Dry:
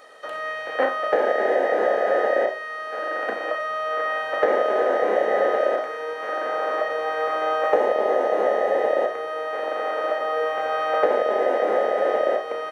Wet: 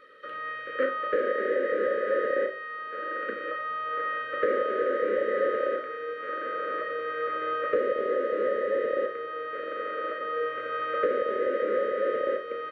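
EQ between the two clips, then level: elliptic band-stop 550–1200 Hz, stop band 40 dB; distance through air 490 m; treble shelf 3.6 kHz +10 dB; -2.0 dB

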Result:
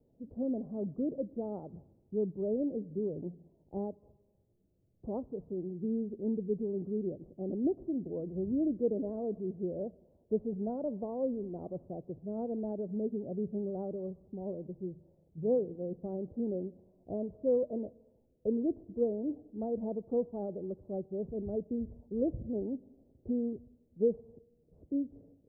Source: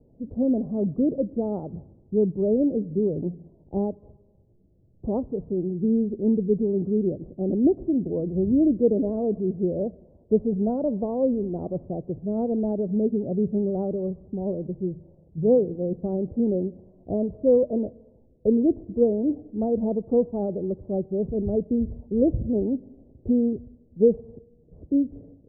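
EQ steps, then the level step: tilt EQ +1.5 dB/octave; -8.5 dB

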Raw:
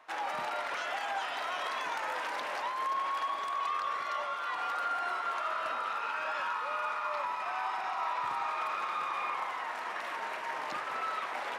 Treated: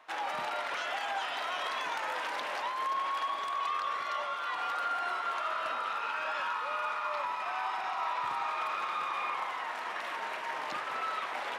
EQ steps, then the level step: peaking EQ 3.3 kHz +3 dB 0.77 oct; 0.0 dB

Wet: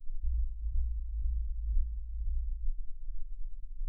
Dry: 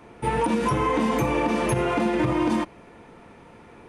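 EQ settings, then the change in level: inverse Chebyshev band-stop 160–9700 Hz, stop band 80 dB; tilt EQ -4 dB/octave; +14.0 dB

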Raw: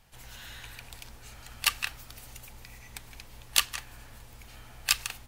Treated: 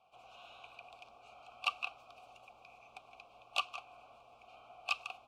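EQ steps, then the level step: vowel filter a; Butterworth band-stop 1.8 kHz, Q 1.9; treble shelf 10 kHz -10.5 dB; +7.5 dB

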